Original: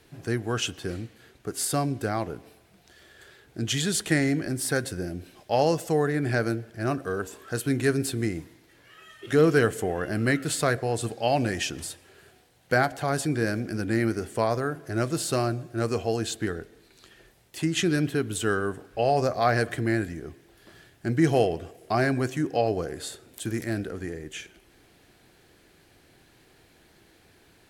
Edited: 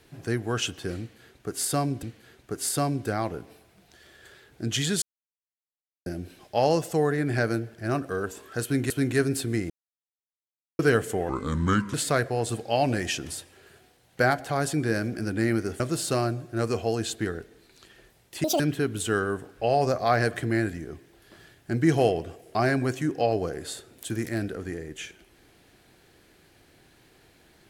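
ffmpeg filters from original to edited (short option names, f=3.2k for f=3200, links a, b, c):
-filter_complex "[0:a]asplit=12[a][b][c][d][e][f][g][h][i][j][k][l];[a]atrim=end=2.032[m];[b]atrim=start=0.988:end=3.98,asetpts=PTS-STARTPTS,afade=t=out:st=2.988:d=0.004:c=hsin[n];[c]atrim=start=3.98:end=5.02,asetpts=PTS-STARTPTS,volume=0[o];[d]atrim=start=5.02:end=7.862,asetpts=PTS-STARTPTS,afade=t=in:d=0.004:c=hsin[p];[e]atrim=start=7.588:end=8.39,asetpts=PTS-STARTPTS,afade=t=out:st=0.798:d=0.004:c=hsin[q];[f]atrim=start=8.39:end=9.48,asetpts=PTS-STARTPTS,volume=0[r];[g]atrim=start=9.48:end=9.984,asetpts=PTS-STARTPTS,afade=t=in:d=0.004:c=hsin[s];[h]atrim=start=9.98:end=10.46,asetpts=PTS-STARTPTS,asetrate=32634,aresample=44100,atrim=end_sample=28605,asetpts=PTS-STARTPTS[t];[i]atrim=start=10.456:end=14.322[u];[j]atrim=start=15.008:end=17.654[v];[k]atrim=start=17.65:end=17.95,asetpts=PTS-STARTPTS,asetrate=83790,aresample=44100,atrim=end_sample=6963,asetpts=PTS-STARTPTS[w];[l]atrim=start=17.946[x];[n][o][p]concat=n=3:v=0:a=1[y];[m][y]acrossfade=d=0.004:c1=hsin:c2=hsin[z];[q][r][s]concat=n=3:v=0:a=1[aa];[z][aa]acrossfade=d=0.004:c1=hsin:c2=hsin[ab];[ab][t]acrossfade=d=0.004:c1=hsin:c2=hsin[ac];[ac][u]acrossfade=d=0.004:c1=hsin:c2=hsin[ad];[ad][v]acrossfade=d=0.004:c1=hsin:c2=hsin[ae];[ae][w]acrossfade=d=0.004:c1=hsin:c2=hsin[af];[af][x]acrossfade=d=0.004:c1=hsin:c2=hsin"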